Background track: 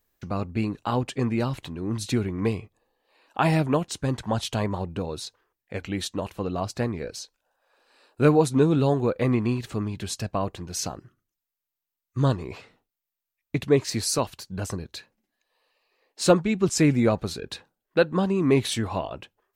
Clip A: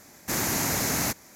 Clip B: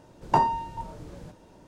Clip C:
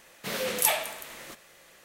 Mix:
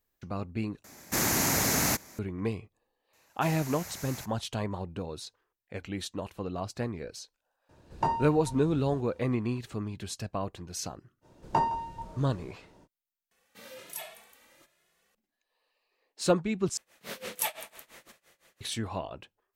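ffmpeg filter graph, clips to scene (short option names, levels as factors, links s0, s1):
-filter_complex "[1:a]asplit=2[s0][s1];[2:a]asplit=2[s2][s3];[3:a]asplit=2[s4][s5];[0:a]volume=0.473[s6];[s1]equalizer=f=280:t=o:w=1:g=-14.5[s7];[s2]equalizer=f=72:w=1.5:g=9[s8];[s3]asplit=2[s9][s10];[s10]adelay=163.3,volume=0.141,highshelf=f=4000:g=-3.67[s11];[s9][s11]amix=inputs=2:normalize=0[s12];[s4]asplit=2[s13][s14];[s14]adelay=2.3,afreqshift=1.2[s15];[s13][s15]amix=inputs=2:normalize=1[s16];[s5]tremolo=f=5.9:d=0.93[s17];[s6]asplit=4[s18][s19][s20][s21];[s18]atrim=end=0.844[s22];[s0]atrim=end=1.35[s23];[s19]atrim=start=2.186:end=13.314[s24];[s16]atrim=end=1.84,asetpts=PTS-STARTPTS,volume=0.211[s25];[s20]atrim=start=15.146:end=16.774[s26];[s17]atrim=end=1.84,asetpts=PTS-STARTPTS,volume=0.531[s27];[s21]atrim=start=18.606[s28];[s7]atrim=end=1.35,asetpts=PTS-STARTPTS,volume=0.158,afade=t=in:d=0.004:c=hsin,afade=t=out:st=1.346:d=0.004:c=hsin,adelay=138033S[s29];[s8]atrim=end=1.67,asetpts=PTS-STARTPTS,volume=0.447,afade=t=in:d=0.004:c=hsin,afade=t=out:st=1.666:d=0.004:c=hsin,adelay=7690[s30];[s12]atrim=end=1.67,asetpts=PTS-STARTPTS,volume=0.562,afade=t=in:d=0.05,afade=t=out:st=1.62:d=0.05,adelay=11210[s31];[s22][s23]acrossfade=d=0.004:c1=hsin:c2=hsin[s32];[s32][s24]acrossfade=d=0.004:c1=hsin:c2=hsin[s33];[s33][s25]acrossfade=d=0.004:c1=hsin:c2=hsin[s34];[s34][s26]acrossfade=d=0.004:c1=hsin:c2=hsin[s35];[s35][s27]acrossfade=d=0.004:c1=hsin:c2=hsin[s36];[s36][s28]acrossfade=d=0.004:c1=hsin:c2=hsin[s37];[s37][s29][s30][s31]amix=inputs=4:normalize=0"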